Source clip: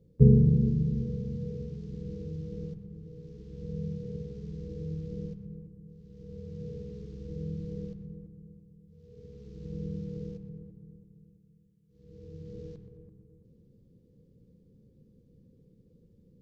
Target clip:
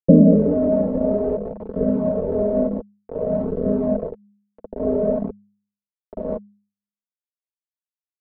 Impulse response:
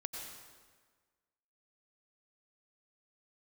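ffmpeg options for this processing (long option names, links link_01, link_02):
-filter_complex "[0:a]asetrate=88200,aresample=44100,aresample=16000,aeval=exprs='val(0)*gte(abs(val(0)),0.0112)':channel_layout=same,aresample=44100,asetrate=28595,aresample=44100,atempo=1.54221,aecho=1:1:4.6:0.76,acrossover=split=250[link_01][link_02];[link_01]acompressor=threshold=-40dB:ratio=6[link_03];[link_03][link_02]amix=inputs=2:normalize=0,lowpass=frequency=510:width_type=q:width=4.6,bandreject=frequency=102.1:width_type=h:width=4,bandreject=frequency=204.2:width_type=h:width=4,flanger=delay=0.6:depth=3:regen=-32:speed=0.55:shape=sinusoidal,alimiter=level_in=19.5dB:limit=-1dB:release=50:level=0:latency=1,volume=-1dB"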